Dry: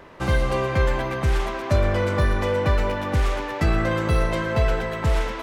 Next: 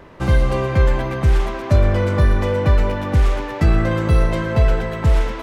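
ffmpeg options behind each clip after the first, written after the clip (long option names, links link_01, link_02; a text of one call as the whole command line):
ffmpeg -i in.wav -af "lowshelf=frequency=340:gain=7" out.wav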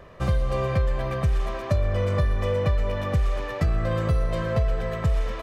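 ffmpeg -i in.wav -af "aecho=1:1:1.7:0.52,acompressor=threshold=-14dB:ratio=6,volume=-5dB" out.wav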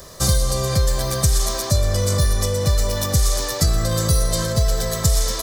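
ffmpeg -i in.wav -filter_complex "[0:a]acrossover=split=300[link_01][link_02];[link_02]alimiter=level_in=1dB:limit=-24dB:level=0:latency=1:release=19,volume=-1dB[link_03];[link_01][link_03]amix=inputs=2:normalize=0,aexciter=amount=8.6:drive=9.3:freq=4100,volume=4.5dB" out.wav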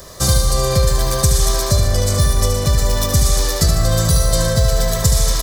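ffmpeg -i in.wav -af "aecho=1:1:74|148|222|296|370|444|518:0.473|0.27|0.154|0.0876|0.0499|0.0285|0.0162,volume=2.5dB" out.wav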